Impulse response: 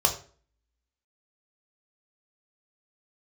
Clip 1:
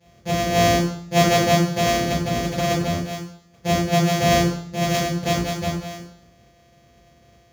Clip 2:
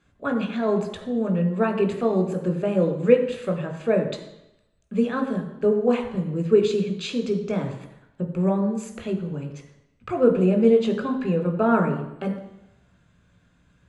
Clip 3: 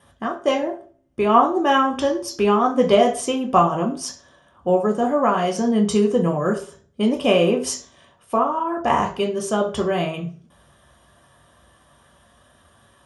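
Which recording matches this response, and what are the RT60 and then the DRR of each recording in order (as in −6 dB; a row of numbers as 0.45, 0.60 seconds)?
3; 0.60, 0.85, 0.45 seconds; −12.5, 5.0, 0.5 decibels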